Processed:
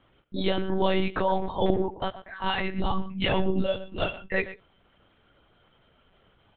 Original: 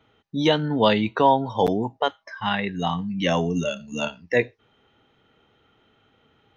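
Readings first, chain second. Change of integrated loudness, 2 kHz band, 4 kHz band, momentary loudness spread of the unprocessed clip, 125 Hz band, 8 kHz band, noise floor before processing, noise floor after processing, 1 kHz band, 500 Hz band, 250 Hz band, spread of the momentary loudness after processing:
-5.0 dB, -3.5 dB, -4.5 dB, 10 LU, -4.5 dB, no reading, -64 dBFS, -64 dBFS, -6.5 dB, -4.5 dB, -5.0 dB, 8 LU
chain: peak limiter -14 dBFS, peak gain reduction 8 dB; chorus voices 2, 0.69 Hz, delay 15 ms, depth 4.3 ms; speakerphone echo 120 ms, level -14 dB; monotone LPC vocoder at 8 kHz 190 Hz; trim +2.5 dB

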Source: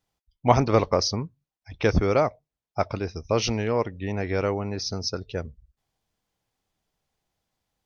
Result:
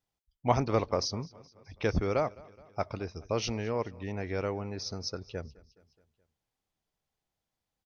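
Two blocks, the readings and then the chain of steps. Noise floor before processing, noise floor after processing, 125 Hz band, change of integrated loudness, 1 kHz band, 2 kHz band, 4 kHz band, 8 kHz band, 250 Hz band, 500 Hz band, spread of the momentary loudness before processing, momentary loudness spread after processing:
under -85 dBFS, under -85 dBFS, -7.5 dB, -7.5 dB, -7.5 dB, -7.5 dB, -7.5 dB, no reading, -7.5 dB, -7.5 dB, 11 LU, 13 LU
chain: feedback delay 211 ms, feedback 58%, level -23 dB; trim -7.5 dB

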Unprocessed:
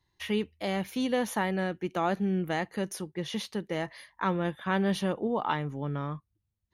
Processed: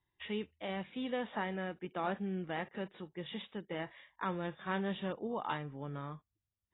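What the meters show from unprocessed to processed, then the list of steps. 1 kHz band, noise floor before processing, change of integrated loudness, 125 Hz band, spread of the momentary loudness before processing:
-7.5 dB, -80 dBFS, -8.5 dB, -9.5 dB, 6 LU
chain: bass shelf 320 Hz -3 dB; trim -7.5 dB; AAC 16 kbps 16 kHz

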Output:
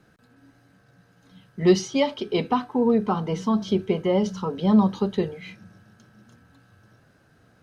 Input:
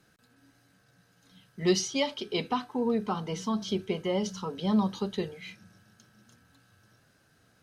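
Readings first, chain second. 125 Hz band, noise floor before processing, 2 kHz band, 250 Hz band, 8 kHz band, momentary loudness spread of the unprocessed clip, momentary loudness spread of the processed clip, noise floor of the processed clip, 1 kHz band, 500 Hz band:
+8.0 dB, -66 dBFS, +3.0 dB, +8.0 dB, -2.0 dB, 8 LU, 8 LU, -60 dBFS, +6.5 dB, +7.5 dB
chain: treble shelf 2.4 kHz -11.5 dB; trim +8 dB

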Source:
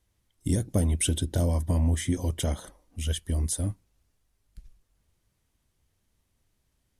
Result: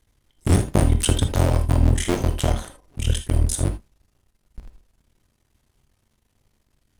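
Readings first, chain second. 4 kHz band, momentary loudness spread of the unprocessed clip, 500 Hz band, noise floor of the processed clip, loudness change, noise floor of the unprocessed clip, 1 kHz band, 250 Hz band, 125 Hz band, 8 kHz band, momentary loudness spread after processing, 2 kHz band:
+6.5 dB, 11 LU, +7.5 dB, -70 dBFS, +6.5 dB, -75 dBFS, +12.0 dB, +5.0 dB, +6.5 dB, +4.0 dB, 10 LU, +8.5 dB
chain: cycle switcher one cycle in 2, muted; treble shelf 8 kHz -4 dB; gated-style reverb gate 100 ms flat, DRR 6.5 dB; trim +9 dB

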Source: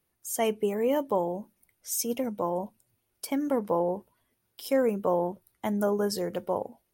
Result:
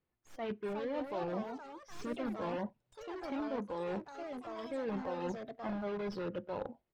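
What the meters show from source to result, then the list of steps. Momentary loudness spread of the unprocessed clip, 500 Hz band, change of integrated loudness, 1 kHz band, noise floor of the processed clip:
10 LU, -11.0 dB, -10.5 dB, -9.0 dB, -85 dBFS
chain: tracing distortion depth 0.042 ms; in parallel at -3 dB: integer overflow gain 26.5 dB; on the sum: speakerphone echo 90 ms, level -30 dB; reverse; compression 6:1, threshold -32 dBFS, peak gain reduction 12 dB; reverse; spectral noise reduction 8 dB; distance through air 280 m; ever faster or slower copies 442 ms, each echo +4 st, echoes 3, each echo -6 dB; trim -2.5 dB

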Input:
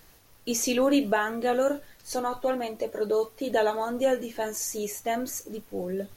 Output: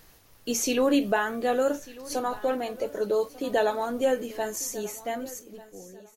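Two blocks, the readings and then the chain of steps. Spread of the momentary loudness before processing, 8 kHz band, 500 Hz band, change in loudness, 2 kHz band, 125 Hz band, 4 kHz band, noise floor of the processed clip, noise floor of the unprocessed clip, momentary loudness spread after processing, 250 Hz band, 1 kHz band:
10 LU, -0.5 dB, 0.0 dB, +0.5 dB, 0.0 dB, no reading, 0.0 dB, -56 dBFS, -56 dBFS, 15 LU, 0.0 dB, 0.0 dB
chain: fade out at the end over 1.60 s; feedback delay 1194 ms, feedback 23%, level -19.5 dB

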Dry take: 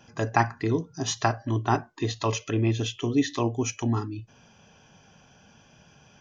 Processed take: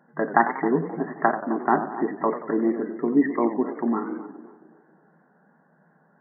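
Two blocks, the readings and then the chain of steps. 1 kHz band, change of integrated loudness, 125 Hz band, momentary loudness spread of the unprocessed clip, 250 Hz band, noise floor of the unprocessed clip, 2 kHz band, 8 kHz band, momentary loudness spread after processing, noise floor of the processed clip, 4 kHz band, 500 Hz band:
+4.5 dB, +3.0 dB, -12.0 dB, 5 LU, +4.5 dB, -57 dBFS, +3.5 dB, no reading, 7 LU, -62 dBFS, under -40 dB, +4.5 dB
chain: gate -48 dBFS, range -7 dB; band-passed feedback delay 264 ms, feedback 43%, band-pass 500 Hz, level -12.5 dB; FFT band-pass 150–2000 Hz; modulated delay 93 ms, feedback 51%, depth 175 cents, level -11 dB; trim +4 dB

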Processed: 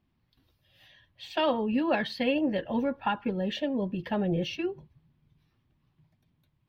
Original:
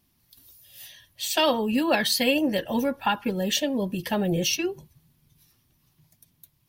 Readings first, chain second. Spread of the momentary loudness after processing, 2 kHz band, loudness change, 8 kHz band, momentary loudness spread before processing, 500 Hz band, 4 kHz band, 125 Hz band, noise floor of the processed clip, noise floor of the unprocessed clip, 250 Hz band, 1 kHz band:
8 LU, -6.5 dB, -5.0 dB, under -25 dB, 11 LU, -3.5 dB, -11.0 dB, -3.0 dB, -74 dBFS, -68 dBFS, -3.0 dB, -4.0 dB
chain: distance through air 360 m; trim -2.5 dB

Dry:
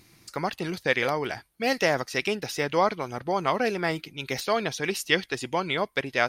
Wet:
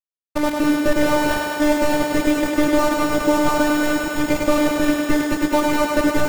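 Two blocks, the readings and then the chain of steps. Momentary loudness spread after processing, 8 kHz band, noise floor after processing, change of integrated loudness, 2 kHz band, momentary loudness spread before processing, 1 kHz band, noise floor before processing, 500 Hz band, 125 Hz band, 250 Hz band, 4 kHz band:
3 LU, +8.5 dB, under -85 dBFS, +8.0 dB, +4.5 dB, 8 LU, +6.5 dB, -58 dBFS, +7.0 dB, +4.0 dB, +15.5 dB, +3.0 dB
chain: CVSD coder 16 kbps; low-pass 2 kHz; tilt EQ -2.5 dB/octave; level rider gain up to 10 dB; in parallel at 0 dB: peak limiter -14 dBFS, peak gain reduction 11.5 dB; on the sum: compression, threshold -12 dBFS, peak gain reduction 6.5 dB; small samples zeroed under -21.5 dBFS; robot voice 298 Hz; on a send: thinning echo 102 ms, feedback 85%, high-pass 160 Hz, level -4 dB; on the sum: trim +2.5 dB

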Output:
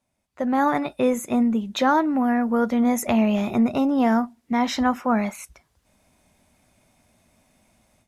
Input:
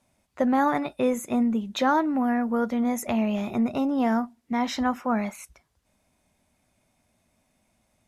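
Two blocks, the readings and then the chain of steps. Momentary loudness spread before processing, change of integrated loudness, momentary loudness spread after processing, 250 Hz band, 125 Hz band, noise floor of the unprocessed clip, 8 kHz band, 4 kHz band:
5 LU, +3.5 dB, 4 LU, +3.5 dB, +4.5 dB, -71 dBFS, +4.0 dB, +3.5 dB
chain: level rider gain up to 15.5 dB; trim -8 dB

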